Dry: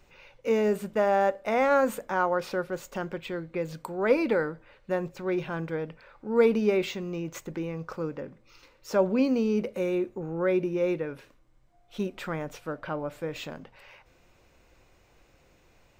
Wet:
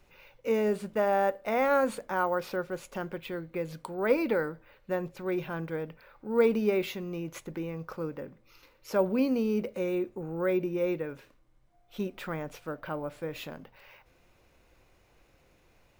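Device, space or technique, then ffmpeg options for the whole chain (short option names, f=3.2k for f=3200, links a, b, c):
crushed at another speed: -af "asetrate=22050,aresample=44100,acrusher=samples=5:mix=1:aa=0.000001,asetrate=88200,aresample=44100,volume=-2.5dB"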